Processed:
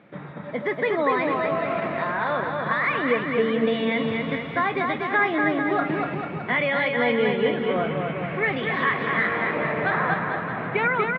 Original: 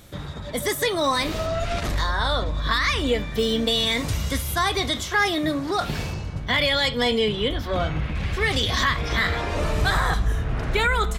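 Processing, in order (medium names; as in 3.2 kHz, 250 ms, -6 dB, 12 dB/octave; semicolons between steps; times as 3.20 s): elliptic band-pass 160–2300 Hz, stop band 50 dB; on a send: bouncing-ball echo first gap 240 ms, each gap 0.85×, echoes 5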